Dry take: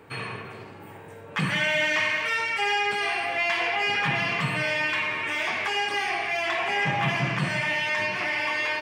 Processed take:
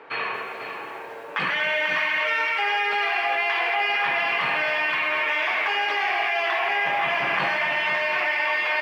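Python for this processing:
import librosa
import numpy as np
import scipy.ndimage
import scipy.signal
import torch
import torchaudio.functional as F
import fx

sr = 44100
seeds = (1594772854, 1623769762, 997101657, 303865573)

p1 = scipy.signal.sosfilt(scipy.signal.butter(2, 550.0, 'highpass', fs=sr, output='sos'), x)
p2 = fx.high_shelf(p1, sr, hz=11000.0, db=-10.5)
p3 = fx.over_compress(p2, sr, threshold_db=-32.0, ratio=-1.0)
p4 = p2 + (p3 * librosa.db_to_amplitude(1.5))
p5 = fx.air_absorb(p4, sr, metres=200.0)
p6 = p5 + fx.echo_single(p5, sr, ms=494, db=-8.0, dry=0)
y = fx.echo_crushed(p6, sr, ms=239, feedback_pct=35, bits=8, wet_db=-12.0)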